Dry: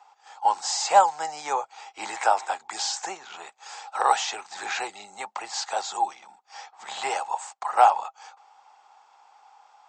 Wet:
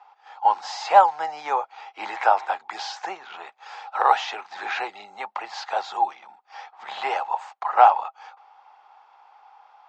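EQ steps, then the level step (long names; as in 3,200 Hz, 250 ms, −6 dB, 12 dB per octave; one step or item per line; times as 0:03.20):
high-frequency loss of the air 260 metres
low-shelf EQ 270 Hz −10.5 dB
+5.0 dB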